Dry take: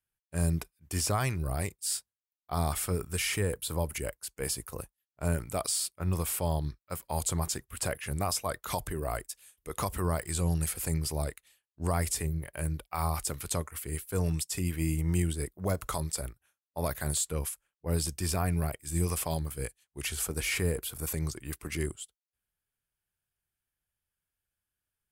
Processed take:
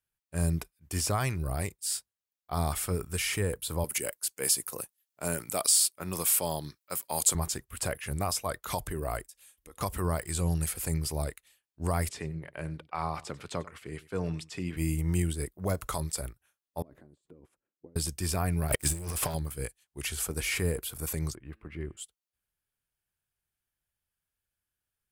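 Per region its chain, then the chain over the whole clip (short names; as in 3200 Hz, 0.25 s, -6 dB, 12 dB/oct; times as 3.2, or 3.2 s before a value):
3.84–7.35 HPF 190 Hz + high shelf 3100 Hz +9 dB
9.29–9.81 comb 3.7 ms, depth 42% + compressor 3:1, threshold -51 dBFS
12.09–14.77 BPF 140–3800 Hz + echo 94 ms -19.5 dB
16.82–17.96 negative-ratio compressor -41 dBFS + band-pass 290 Hz, Q 2.8
18.68–19.35 sample leveller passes 3 + negative-ratio compressor -29 dBFS, ratio -0.5
21.35–21.97 air absorption 490 m + resonator 110 Hz, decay 1.7 s, mix 40%
whole clip: dry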